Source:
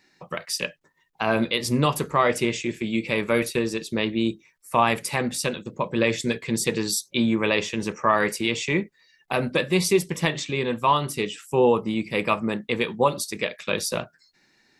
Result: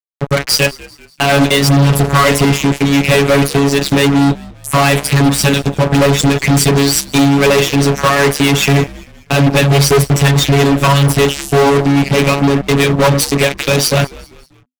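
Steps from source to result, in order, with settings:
parametric band 150 Hz +6.5 dB 1.5 octaves
in parallel at +1 dB: downward compressor, threshold −27 dBFS, peak gain reduction 14 dB
on the sum: phases set to zero 140 Hz
rotating-speaker cabinet horn 1.2 Hz, later 5 Hz, at 0:05.39
fuzz pedal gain 31 dB, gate −38 dBFS
on a send: echo with shifted repeats 195 ms, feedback 44%, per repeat −85 Hz, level −21.5 dB
on the sum: level +6.5 dB

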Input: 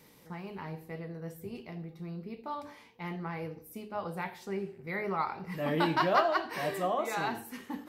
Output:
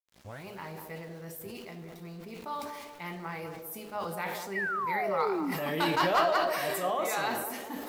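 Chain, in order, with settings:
turntable start at the beginning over 0.47 s
high-shelf EQ 6,700 Hz +10 dB
feedback echo with a band-pass in the loop 197 ms, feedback 55%, band-pass 460 Hz, level −6 dB
in parallel at −5 dB: wave folding −20.5 dBFS
on the sum: low-shelf EQ 470 Hz −7.5 dB
centre clipping without the shift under −50.5 dBFS
sound drawn into the spectrogram fall, 0:04.55–0:05.52, 250–2,000 Hz −30 dBFS
on a send at −18.5 dB: convolution reverb RT60 1.8 s, pre-delay 4 ms
on the sum: level that may fall only so fast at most 34 dB per second
level −2 dB

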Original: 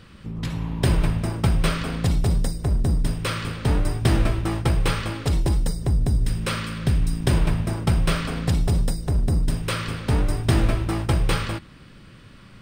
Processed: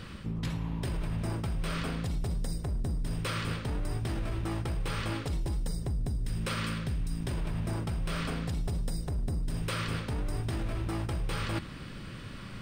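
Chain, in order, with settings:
brickwall limiter −18.5 dBFS, peak gain reduction 10.5 dB
reversed playback
downward compressor 6 to 1, threshold −34 dBFS, peak gain reduction 12 dB
reversed playback
level +4 dB

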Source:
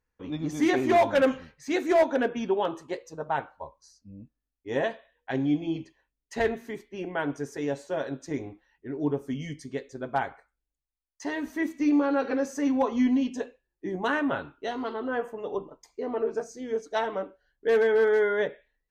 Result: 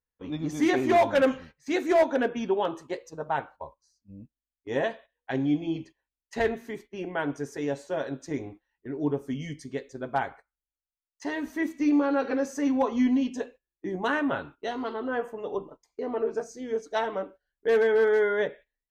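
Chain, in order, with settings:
noise gate −46 dBFS, range −12 dB

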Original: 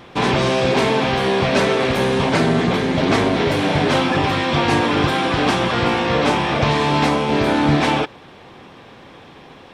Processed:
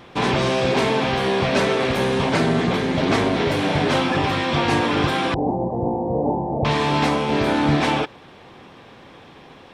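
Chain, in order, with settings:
0:05.34–0:06.65: elliptic low-pass filter 860 Hz, stop band 40 dB
level −2.5 dB

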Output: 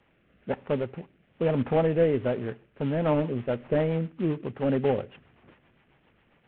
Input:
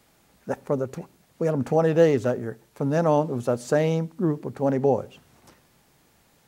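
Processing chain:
variable-slope delta modulation 16 kbit/s
rotating-speaker cabinet horn 1.1 Hz, later 7.5 Hz, at 0:02.44

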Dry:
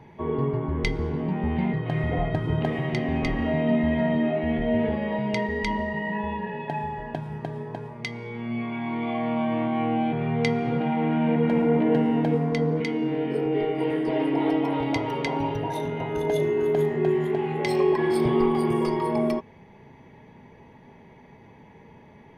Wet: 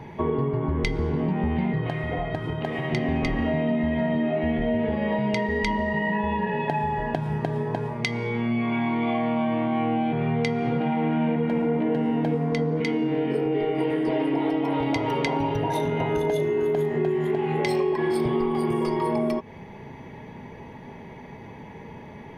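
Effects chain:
downward compressor, threshold −30 dBFS, peak gain reduction 12.5 dB
0:01.87–0:02.91: low-shelf EQ 350 Hz −6.5 dB
level +8.5 dB

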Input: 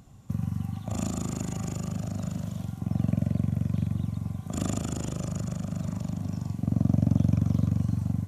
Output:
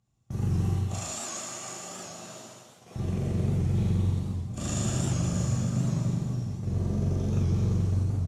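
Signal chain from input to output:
speech leveller within 4 dB 2 s
noise gate −28 dBFS, range −26 dB
asymmetric clip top −26.5 dBFS
low-pass filter 7,300 Hz 12 dB per octave
high-shelf EQ 3,700 Hz +10.5 dB
slap from a distant wall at 36 metres, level −10 dB
brickwall limiter −21 dBFS, peak gain reduction 7 dB
0:00.75–0:02.96: high-pass filter 590 Hz 12 dB per octave
reverb whose tail is shaped and stops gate 470 ms falling, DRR −7 dB
wow of a warped record 78 rpm, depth 100 cents
level −5.5 dB

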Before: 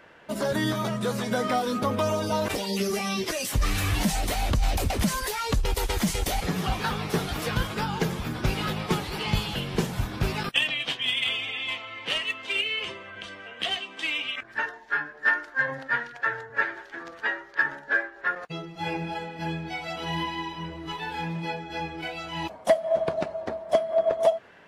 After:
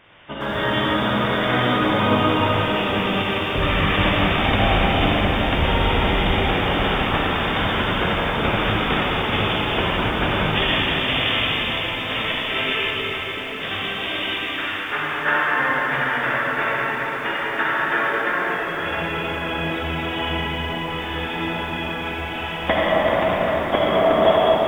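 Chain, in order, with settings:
ceiling on every frequency bin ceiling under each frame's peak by 18 dB
0:14.19–0:14.88: high-pass filter 1,200 Hz 24 dB per octave
flanger 1.3 Hz, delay 8.7 ms, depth 6.2 ms, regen +68%
linear-phase brick-wall low-pass 3,700 Hz
convolution reverb RT60 5.7 s, pre-delay 39 ms, DRR −7 dB
feedback echo at a low word length 113 ms, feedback 35%, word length 7 bits, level −14 dB
level +4 dB

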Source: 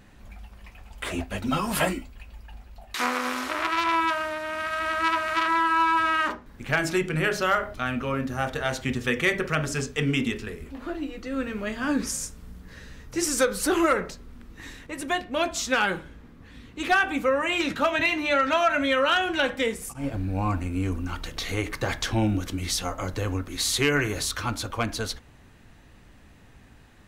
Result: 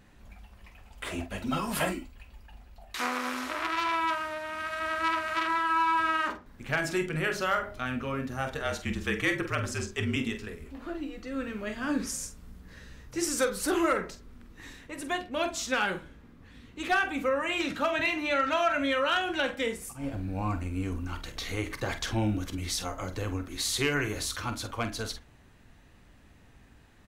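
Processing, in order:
0:08.60–0:10.16: frequency shifter −40 Hz
on a send: multi-tap delay 44/47 ms −17/−11 dB
on the sum: level −5 dB

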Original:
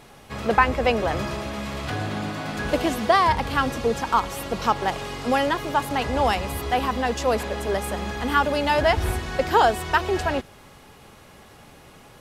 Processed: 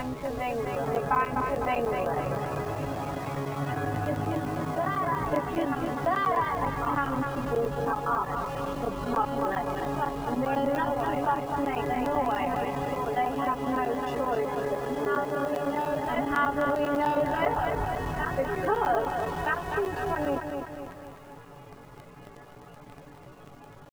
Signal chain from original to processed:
backwards echo 647 ms −6.5 dB
tempo change 0.51×
spectral peaks only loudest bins 64
low-pass filter 2,100 Hz 12 dB per octave
comb filter 7 ms, depth 93%
in parallel at −5 dB: bit-depth reduction 6 bits, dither none
on the sum: downward compressor 2 to 1, threshold −32 dBFS, peak gain reduction 14.5 dB
regular buffer underruns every 0.10 s, samples 512, zero
feedback echo at a low word length 252 ms, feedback 55%, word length 9 bits, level −5.5 dB
level −2 dB

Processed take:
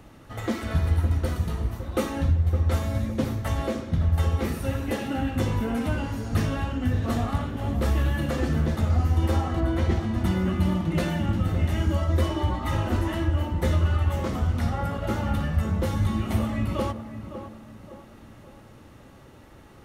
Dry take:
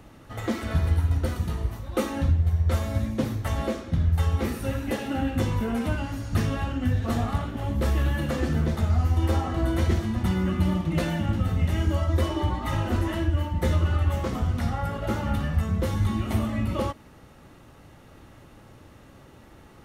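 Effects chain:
0:09.59–0:10.13: high-shelf EQ 5,100 Hz → 8,300 Hz −12 dB
tape delay 560 ms, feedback 50%, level −8 dB, low-pass 1,200 Hz

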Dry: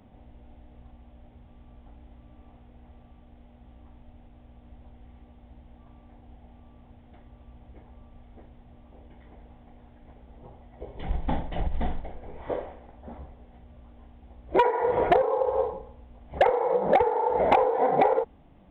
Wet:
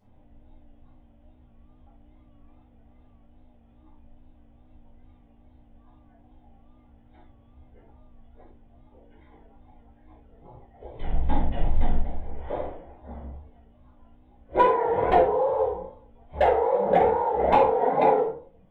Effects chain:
rectangular room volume 400 cubic metres, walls furnished, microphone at 5 metres
pitch vibrato 2.4 Hz 70 cents
noise reduction from a noise print of the clip's start 7 dB
level −8 dB

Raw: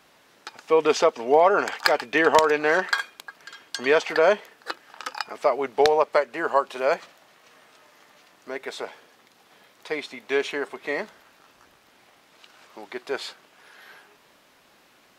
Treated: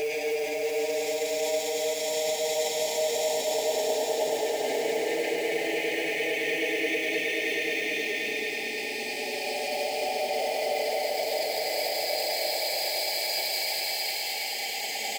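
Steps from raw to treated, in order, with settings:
played backwards from end to start
RIAA equalisation recording
extreme stretch with random phases 19×, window 0.25 s, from 0:12.67
Chebyshev band-stop filter 780–2,100 Hz, order 3
high-shelf EQ 2,400 Hz −6.5 dB
comb filter 4.9 ms, depth 39%
brickwall limiter −23.5 dBFS, peak gain reduction 15 dB
mains-hum notches 60/120/180/240/300/360/420/480 Hz
floating-point word with a short mantissa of 2 bits
echo that builds up and dies away 106 ms, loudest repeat 5, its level −11.5 dB
level +1.5 dB

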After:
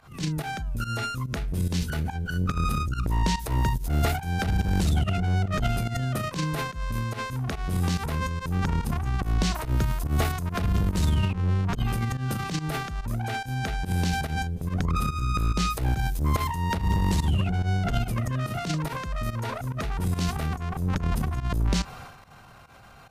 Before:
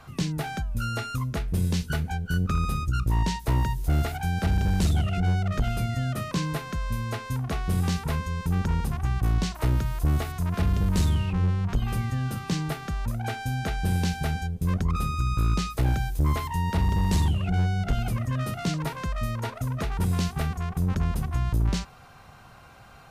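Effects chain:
transient designer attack −10 dB, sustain +9 dB
fake sidechain pumping 143 BPM, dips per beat 1, −15 dB, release 98 ms

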